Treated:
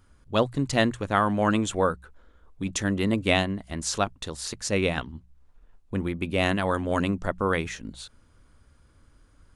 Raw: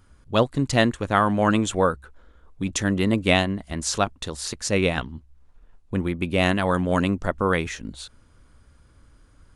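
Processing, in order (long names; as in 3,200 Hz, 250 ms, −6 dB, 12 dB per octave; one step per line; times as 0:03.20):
mains-hum notches 60/120/180 Hz
level −3 dB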